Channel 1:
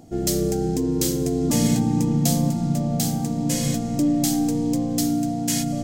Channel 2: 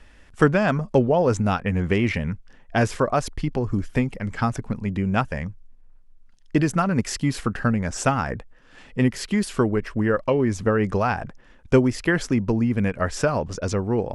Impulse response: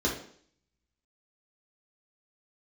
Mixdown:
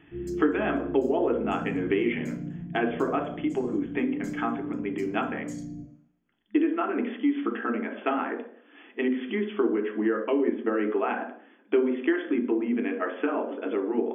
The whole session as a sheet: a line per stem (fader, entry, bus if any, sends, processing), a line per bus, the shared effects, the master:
−14.5 dB, 0.00 s, send −14 dB, spectral envelope exaggerated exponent 2; automatic ducking −8 dB, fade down 0.30 s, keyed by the second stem
−3.0 dB, 0.00 s, send −12 dB, de-essing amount 55%; brick-wall band-pass 210–3,500 Hz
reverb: on, RT60 0.55 s, pre-delay 3 ms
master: downward compressor 2 to 1, threshold −24 dBFS, peak gain reduction 8 dB

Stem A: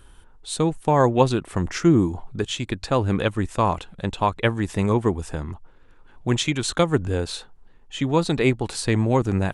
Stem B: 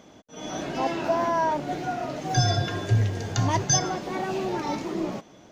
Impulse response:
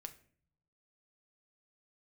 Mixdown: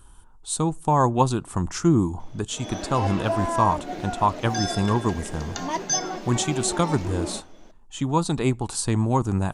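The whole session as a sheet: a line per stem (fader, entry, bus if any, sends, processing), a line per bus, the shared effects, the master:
−1.5 dB, 0.00 s, send −12.5 dB, octave-band graphic EQ 500/1,000/2,000/4,000/8,000 Hz −7/+6/−10/−3/+6 dB
−4.5 dB, 2.20 s, send −4 dB, Butterworth high-pass 180 Hz 36 dB per octave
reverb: on, RT60 0.50 s, pre-delay 5 ms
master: no processing

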